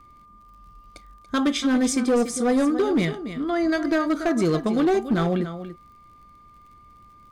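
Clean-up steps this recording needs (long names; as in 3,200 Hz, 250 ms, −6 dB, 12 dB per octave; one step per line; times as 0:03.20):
clipped peaks rebuilt −15.5 dBFS
click removal
notch filter 1,200 Hz, Q 30
echo removal 285 ms −12 dB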